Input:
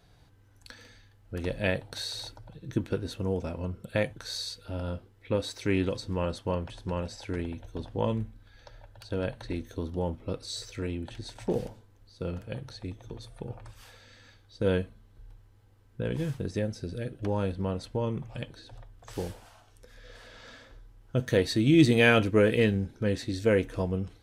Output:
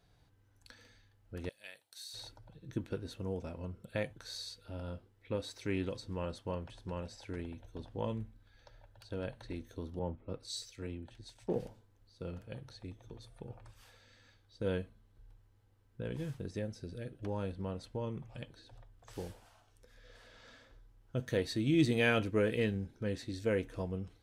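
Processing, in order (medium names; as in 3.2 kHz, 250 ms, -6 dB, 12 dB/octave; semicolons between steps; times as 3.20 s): 1.49–2.14 s: differentiator; 9.99–11.60 s: three bands expanded up and down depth 70%; trim -8.5 dB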